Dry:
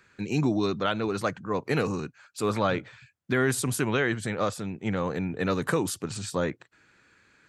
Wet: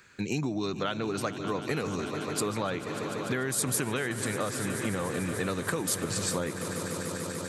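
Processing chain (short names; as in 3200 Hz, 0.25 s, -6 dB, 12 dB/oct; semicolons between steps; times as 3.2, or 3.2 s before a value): swelling echo 0.147 s, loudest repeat 5, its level -16.5 dB; compressor 5:1, threshold -30 dBFS, peak gain reduction 10 dB; high shelf 4800 Hz +8.5 dB; gain +2 dB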